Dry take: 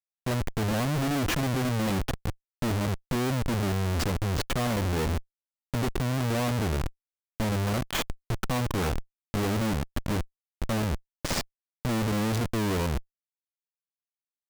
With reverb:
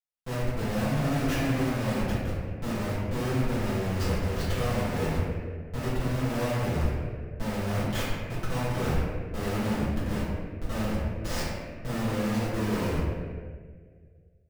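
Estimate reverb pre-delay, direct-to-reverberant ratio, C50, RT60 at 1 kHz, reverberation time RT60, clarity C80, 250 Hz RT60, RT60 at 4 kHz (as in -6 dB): 4 ms, -11.5 dB, -1.5 dB, 1.4 s, 1.8 s, 0.5 dB, 2.0 s, 1.1 s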